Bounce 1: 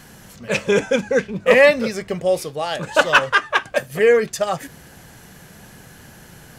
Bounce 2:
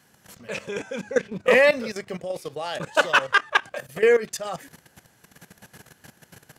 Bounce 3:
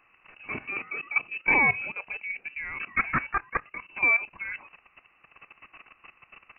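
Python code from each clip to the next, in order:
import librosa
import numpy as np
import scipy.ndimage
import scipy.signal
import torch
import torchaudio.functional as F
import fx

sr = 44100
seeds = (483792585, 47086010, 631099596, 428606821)

y1 = scipy.signal.sosfilt(scipy.signal.butter(4, 68.0, 'highpass', fs=sr, output='sos'), x)
y1 = fx.low_shelf(y1, sr, hz=230.0, db=-5.5)
y1 = fx.level_steps(y1, sr, step_db=15)
y2 = fx.dynamic_eq(y1, sr, hz=1300.0, q=0.72, threshold_db=-32.0, ratio=4.0, max_db=-5)
y2 = fx.rider(y2, sr, range_db=3, speed_s=2.0)
y2 = fx.freq_invert(y2, sr, carrier_hz=2800)
y2 = y2 * 10.0 ** (-4.5 / 20.0)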